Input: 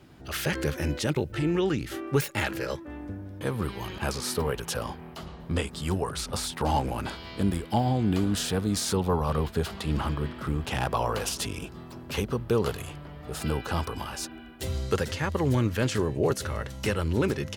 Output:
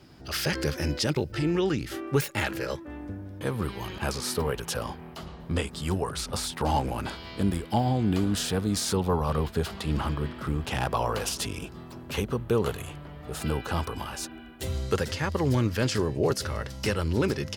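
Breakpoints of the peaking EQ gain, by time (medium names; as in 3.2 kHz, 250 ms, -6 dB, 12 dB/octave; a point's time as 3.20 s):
peaking EQ 5 kHz 0.31 oct
1.41 s +11 dB
2.10 s +1 dB
11.81 s +1 dB
12.69 s -9 dB
13.04 s -2 dB
14.81 s -2 dB
15.35 s +8.5 dB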